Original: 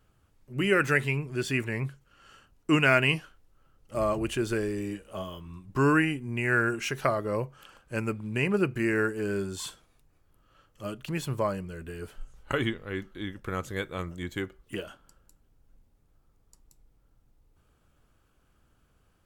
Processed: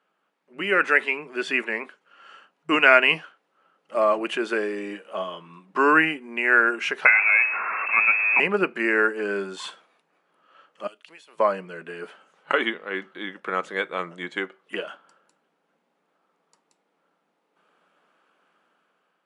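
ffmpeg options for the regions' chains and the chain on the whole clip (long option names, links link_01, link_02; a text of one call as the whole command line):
ffmpeg -i in.wav -filter_complex "[0:a]asettb=1/sr,asplit=3[link_01][link_02][link_03];[link_01]atrim=end=7.054[link_04];[link_02]atrim=start=7.05:end=8.4,asetpts=PTS-STARTPTS,afade=type=in:duration=0.004:curve=qsin,afade=type=out:start_time=1.346:duration=0.004:curve=qsin,aeval=exprs='val(0)+0.5*0.0376*sgn(val(0))':channel_layout=same,lowpass=frequency=2300:width_type=q:width=0.5098,lowpass=frequency=2300:width_type=q:width=0.6013,lowpass=frequency=2300:width_type=q:width=0.9,lowpass=frequency=2300:width_type=q:width=2.563,afreqshift=-2700[link_05];[link_03]atrim=start=8.396[link_06];[link_04][link_05]acrossfade=duration=0.004:curve1=hsin:curve2=qsin[link_07];[link_07][link_06]acrossfade=duration=0.004:curve1=qsin:curve2=hsin,asettb=1/sr,asplit=3[link_08][link_09][link_10];[link_08]atrim=end=10.874[link_11];[link_09]atrim=start=10.87:end=11.4,asetpts=PTS-STARTPTS,afade=type=in:duration=0.004:curve=qsin,afade=type=out:start_time=0.526:duration=0.004:curve=qsin,highpass=750,equalizer=frequency=1200:width=0.54:gain=-13.5,acompressor=threshold=-49dB:ratio=6:attack=3.2:release=140:knee=1:detection=peak[link_12];[link_10]atrim=start=11.396[link_13];[link_11][link_12]acrossfade=duration=0.004:curve1=hsin:curve2=qsin[link_14];[link_14][link_13]acrossfade=duration=0.004:curve1=qsin:curve2=hsin,afftfilt=real='re*between(b*sr/4096,160,11000)':imag='im*between(b*sr/4096,160,11000)':win_size=4096:overlap=0.75,acrossover=split=450 3500:gain=0.2 1 0.158[link_15][link_16][link_17];[link_15][link_16][link_17]amix=inputs=3:normalize=0,dynaudnorm=framelen=250:gausssize=7:maxgain=7.5dB,volume=2dB" out.wav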